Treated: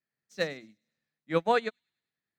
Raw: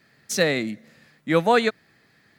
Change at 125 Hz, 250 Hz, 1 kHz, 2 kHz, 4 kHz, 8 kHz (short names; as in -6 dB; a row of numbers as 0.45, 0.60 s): -11.0 dB, -12.0 dB, -6.5 dB, -10.0 dB, -11.0 dB, under -20 dB